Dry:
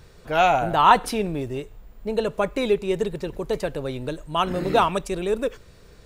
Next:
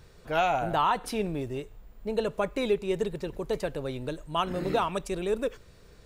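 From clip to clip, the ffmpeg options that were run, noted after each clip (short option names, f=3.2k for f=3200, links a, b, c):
-af "alimiter=limit=-11dB:level=0:latency=1:release=284,volume=-4.5dB"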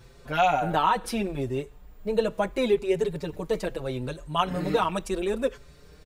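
-filter_complex "[0:a]asplit=2[a][b];[b]adelay=5.5,afreqshift=0.75[c];[a][c]amix=inputs=2:normalize=1,volume=5.5dB"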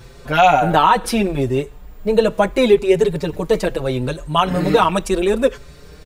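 -af "alimiter=level_in=11.5dB:limit=-1dB:release=50:level=0:latency=1,volume=-1dB"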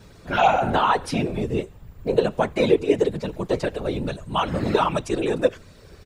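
-filter_complex "[0:a]acrossover=split=9100[a][b];[b]acompressor=threshold=-60dB:ratio=4:attack=1:release=60[c];[a][c]amix=inputs=2:normalize=0,afftfilt=real='hypot(re,im)*cos(2*PI*random(0))':imag='hypot(re,im)*sin(2*PI*random(1))':win_size=512:overlap=0.75"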